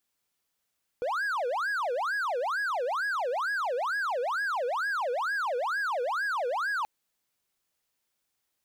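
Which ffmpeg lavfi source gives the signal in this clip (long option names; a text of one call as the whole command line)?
ffmpeg -f lavfi -i "aevalsrc='0.0562*(1-4*abs(mod((1073.5*t-596.5/(2*PI*2.2)*sin(2*PI*2.2*t))+0.25,1)-0.5))':duration=5.83:sample_rate=44100" out.wav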